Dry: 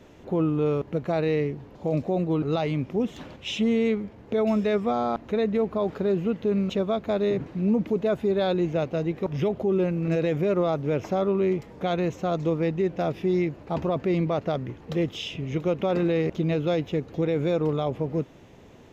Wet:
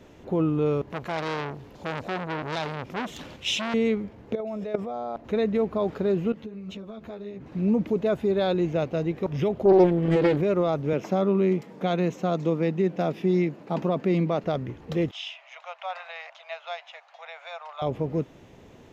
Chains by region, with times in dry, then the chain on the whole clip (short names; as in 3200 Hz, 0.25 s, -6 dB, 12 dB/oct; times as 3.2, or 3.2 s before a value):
0.9–3.74 high shelf 2300 Hz +9 dB + core saturation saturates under 1800 Hz
4.35–5.25 bell 610 Hz +9 dB 1.1 oct + level quantiser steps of 16 dB
6.32–7.52 compressor 16:1, threshold -32 dBFS + ensemble effect
9.65–10.41 notch comb 320 Hz + small resonant body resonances 330/1000/1700/3300 Hz, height 15 dB, ringing for 40 ms + Doppler distortion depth 0.41 ms
10.93–14.44 HPF 150 Hz 24 dB/oct + bell 190 Hz +4.5 dB 0.39 oct
15.11–17.82 steep high-pass 640 Hz 72 dB/oct + air absorption 100 m
whole clip: dry